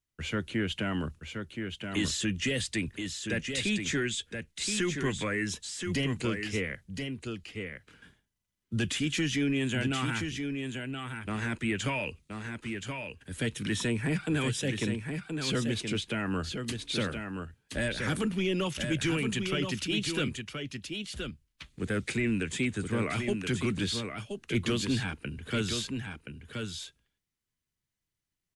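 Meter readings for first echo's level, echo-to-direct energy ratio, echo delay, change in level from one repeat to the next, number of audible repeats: -6.0 dB, -6.0 dB, 1024 ms, no regular repeats, 1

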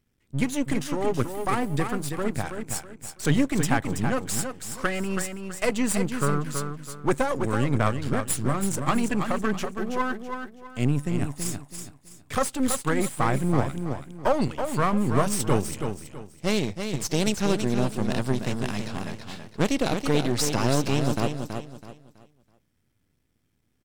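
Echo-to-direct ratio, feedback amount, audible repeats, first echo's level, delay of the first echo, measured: -6.5 dB, 30%, 3, -7.0 dB, 327 ms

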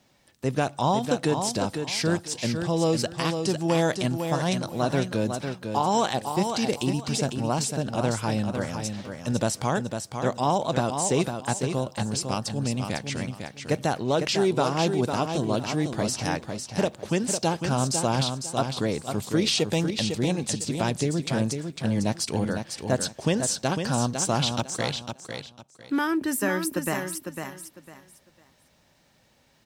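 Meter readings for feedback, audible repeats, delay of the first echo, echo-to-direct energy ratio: 24%, 3, 502 ms, -6.0 dB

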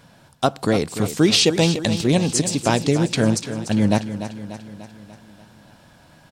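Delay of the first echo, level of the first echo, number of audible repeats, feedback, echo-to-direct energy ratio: 294 ms, -11.0 dB, 5, 56%, -9.5 dB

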